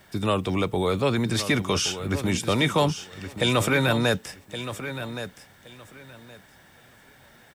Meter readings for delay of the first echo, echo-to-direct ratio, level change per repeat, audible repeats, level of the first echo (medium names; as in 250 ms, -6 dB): 1120 ms, -11.0 dB, -14.0 dB, 2, -11.0 dB